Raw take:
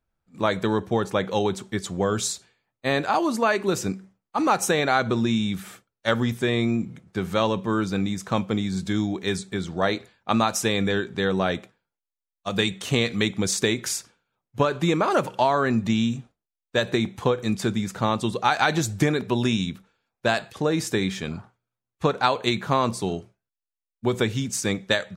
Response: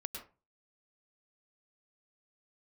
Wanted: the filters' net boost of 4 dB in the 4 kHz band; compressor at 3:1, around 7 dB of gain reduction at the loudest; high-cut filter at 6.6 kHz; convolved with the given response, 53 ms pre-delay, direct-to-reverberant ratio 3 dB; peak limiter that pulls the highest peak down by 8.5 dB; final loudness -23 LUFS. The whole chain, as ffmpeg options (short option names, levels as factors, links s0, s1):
-filter_complex "[0:a]lowpass=6600,equalizer=f=4000:t=o:g=5,acompressor=threshold=0.0562:ratio=3,alimiter=limit=0.126:level=0:latency=1,asplit=2[s0][s1];[1:a]atrim=start_sample=2205,adelay=53[s2];[s1][s2]afir=irnorm=-1:irlink=0,volume=0.794[s3];[s0][s3]amix=inputs=2:normalize=0,volume=2"